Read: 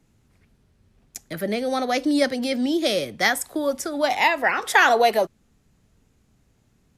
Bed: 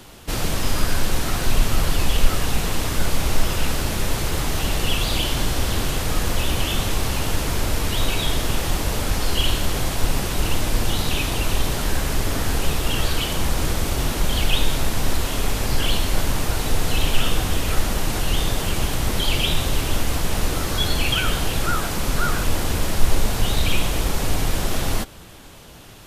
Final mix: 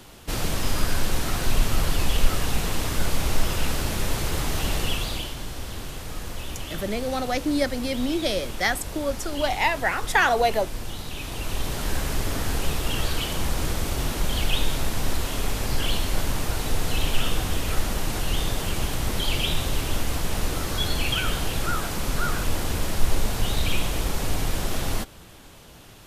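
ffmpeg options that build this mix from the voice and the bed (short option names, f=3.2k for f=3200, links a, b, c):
-filter_complex "[0:a]adelay=5400,volume=-3.5dB[a];[1:a]volume=5dB,afade=t=out:st=4.76:d=0.59:silence=0.354813,afade=t=in:st=11.13:d=0.82:silence=0.398107[b];[a][b]amix=inputs=2:normalize=0"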